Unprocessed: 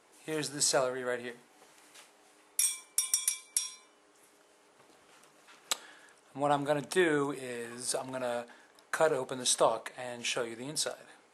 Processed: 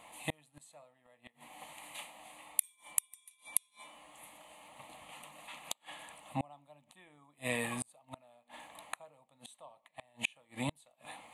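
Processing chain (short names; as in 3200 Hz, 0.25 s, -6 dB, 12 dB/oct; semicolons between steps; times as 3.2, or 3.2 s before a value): flipped gate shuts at -28 dBFS, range -36 dB; fixed phaser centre 1500 Hz, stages 6; gain +11.5 dB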